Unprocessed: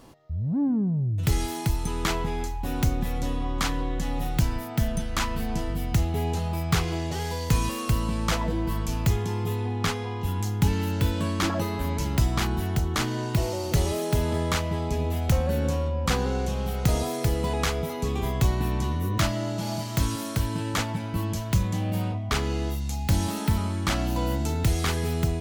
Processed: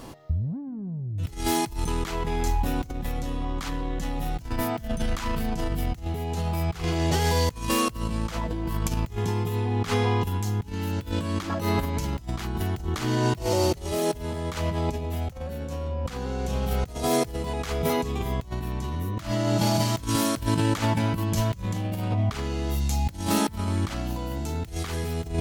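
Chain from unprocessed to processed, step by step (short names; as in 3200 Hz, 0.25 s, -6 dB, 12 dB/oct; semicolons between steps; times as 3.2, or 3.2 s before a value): negative-ratio compressor -30 dBFS, ratio -0.5; gain +4 dB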